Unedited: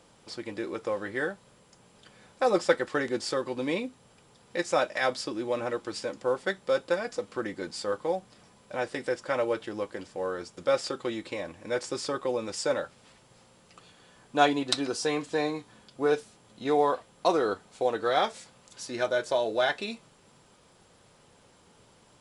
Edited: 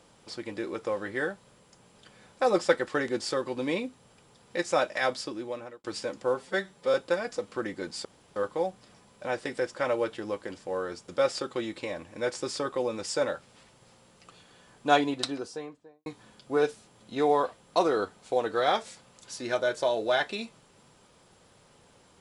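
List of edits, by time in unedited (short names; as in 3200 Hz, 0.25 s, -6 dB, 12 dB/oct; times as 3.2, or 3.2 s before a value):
4.87–5.84 fade out equal-power
6.34–6.74 stretch 1.5×
7.85 insert room tone 0.31 s
14.4–15.55 studio fade out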